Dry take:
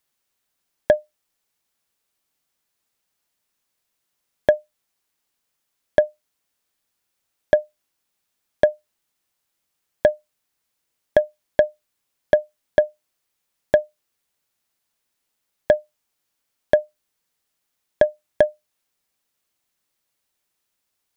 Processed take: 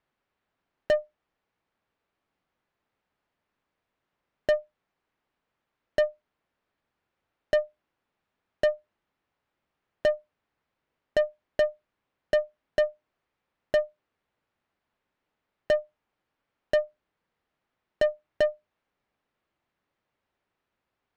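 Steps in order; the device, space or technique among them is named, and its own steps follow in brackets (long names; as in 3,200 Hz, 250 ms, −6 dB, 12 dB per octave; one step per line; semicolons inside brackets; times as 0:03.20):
Bessel low-pass filter 2,100 Hz, order 2
tube preamp driven hard (tube saturation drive 23 dB, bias 0.2; high-shelf EQ 3,500 Hz −8.5 dB)
level +5 dB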